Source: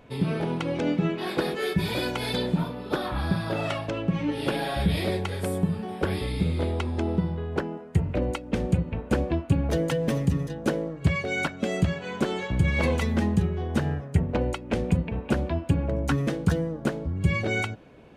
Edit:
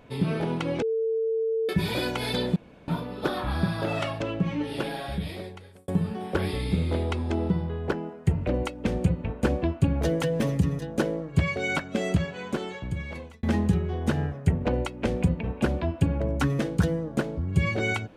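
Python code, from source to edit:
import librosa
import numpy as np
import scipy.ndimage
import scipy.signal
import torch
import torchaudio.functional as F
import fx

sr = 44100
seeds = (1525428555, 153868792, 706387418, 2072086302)

y = fx.edit(x, sr, fx.bleep(start_s=0.82, length_s=0.87, hz=448.0, db=-23.0),
    fx.insert_room_tone(at_s=2.56, length_s=0.32),
    fx.fade_out_span(start_s=3.98, length_s=1.58),
    fx.fade_out_span(start_s=11.76, length_s=1.35), tone=tone)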